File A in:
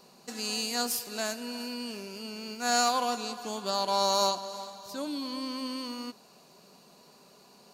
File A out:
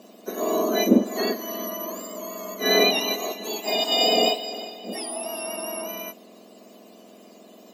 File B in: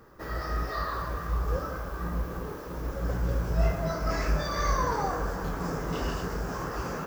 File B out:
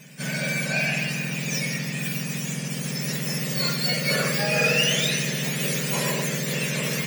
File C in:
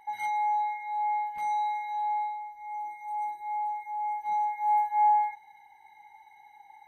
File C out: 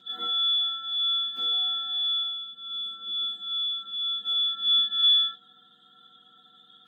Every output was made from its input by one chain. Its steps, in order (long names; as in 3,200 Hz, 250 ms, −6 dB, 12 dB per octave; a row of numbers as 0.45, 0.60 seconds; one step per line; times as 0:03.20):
frequency axis turned over on the octave scale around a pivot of 1,700 Hz
loudness normalisation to −24 LKFS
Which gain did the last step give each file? +7.0, +11.5, +3.0 decibels